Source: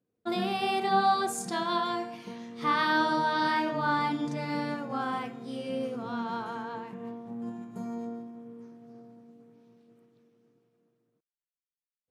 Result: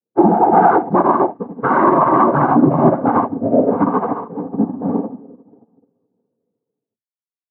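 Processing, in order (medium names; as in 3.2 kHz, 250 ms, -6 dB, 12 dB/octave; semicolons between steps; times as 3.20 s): inverse Chebyshev low-pass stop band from 2.6 kHz, stop band 50 dB; hum notches 60/120/180/240/300 Hz; noise-vocoded speech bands 16; granular stretch 0.62×, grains 144 ms; loudness maximiser +28 dB; upward expansion 2.5:1, over -29 dBFS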